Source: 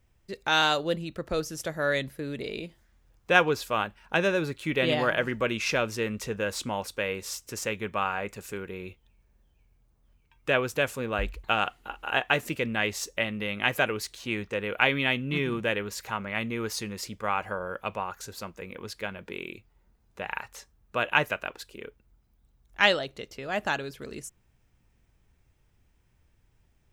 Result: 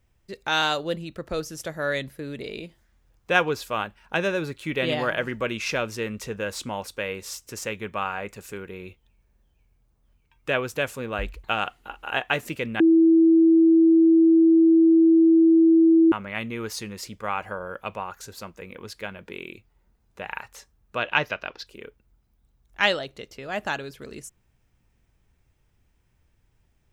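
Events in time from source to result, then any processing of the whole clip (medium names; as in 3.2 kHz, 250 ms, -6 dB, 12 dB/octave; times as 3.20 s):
12.80–16.12 s: bleep 327 Hz -12.5 dBFS
20.97–21.67 s: resonant high shelf 6.7 kHz -9.5 dB, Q 3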